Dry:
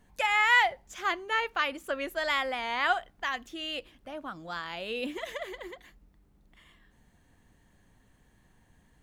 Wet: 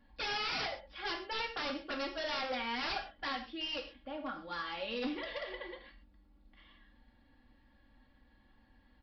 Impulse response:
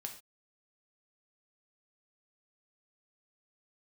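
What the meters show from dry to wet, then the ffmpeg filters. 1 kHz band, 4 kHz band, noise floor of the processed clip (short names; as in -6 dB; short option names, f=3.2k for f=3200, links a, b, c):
-10.0 dB, -3.0 dB, -67 dBFS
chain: -filter_complex "[0:a]aecho=1:1:3.6:0.82,acontrast=56,aresample=11025,aeval=exprs='0.0891*(abs(mod(val(0)/0.0891+3,4)-2)-1)':c=same,aresample=44100[a];[1:a]atrim=start_sample=2205[b];[a][b]afir=irnorm=-1:irlink=0,volume=-7.5dB"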